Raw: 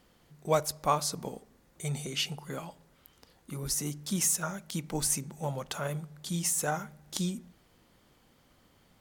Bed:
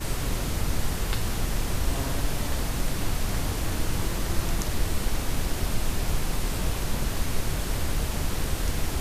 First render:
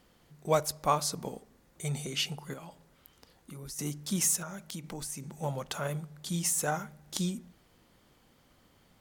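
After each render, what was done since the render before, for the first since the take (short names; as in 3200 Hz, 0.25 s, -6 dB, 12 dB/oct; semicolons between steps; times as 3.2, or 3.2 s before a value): 2.53–3.79 compressor 3:1, threshold -43 dBFS; 4.42–5.33 compressor 4:1, threshold -37 dBFS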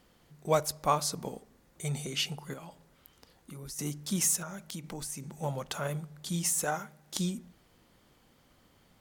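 6.64–7.16 HPF 240 Hz 6 dB/oct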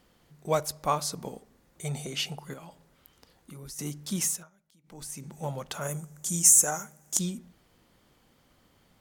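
1.85–2.4 bell 670 Hz +6 dB; 4.24–5.1 dip -23.5 dB, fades 0.26 s; 5.81–7.19 resonant high shelf 5300 Hz +8.5 dB, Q 3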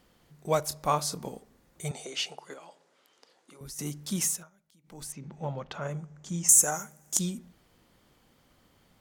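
0.64–1.29 doubler 27 ms -11 dB; 1.91–3.61 Chebyshev band-pass 420–7300 Hz; 5.12–6.49 air absorption 190 m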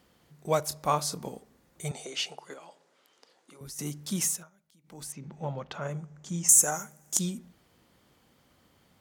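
HPF 54 Hz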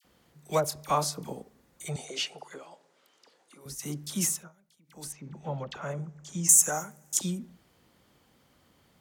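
dispersion lows, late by 48 ms, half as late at 1400 Hz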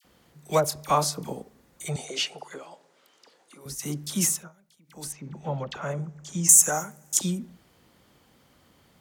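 gain +4 dB; limiter -3 dBFS, peak gain reduction 1 dB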